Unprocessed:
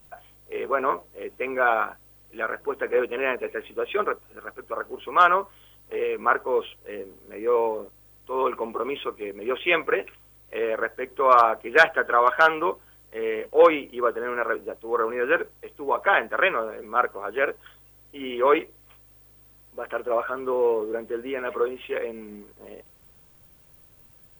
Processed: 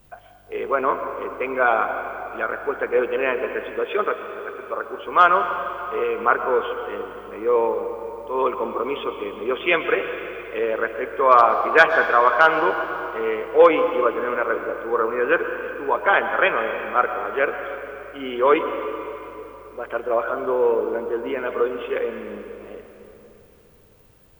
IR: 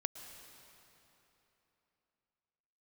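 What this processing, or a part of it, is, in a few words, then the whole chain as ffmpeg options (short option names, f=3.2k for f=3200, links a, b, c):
swimming-pool hall: -filter_complex "[1:a]atrim=start_sample=2205[a];[0:a][a]afir=irnorm=-1:irlink=0,highshelf=f=5.6k:g=-7.5,asettb=1/sr,asplit=3[b][c][d];[b]atrim=end=3.804[e];[c]atrim=start=3.8:end=5.06,asetpts=PTS-STARTPTS,afade=t=in:d=0.004:c=qsin,afade=t=out:st=1.256:d=0.004:c=qsin,highpass=f=140:p=1[f];[d]atrim=start=5.056[g];[e][f]acrossfade=d=0.004:c1=hsin:c2=qsin[h];[h][g]acrossfade=d=0.004:c1=qsin:c2=hsin,volume=4dB"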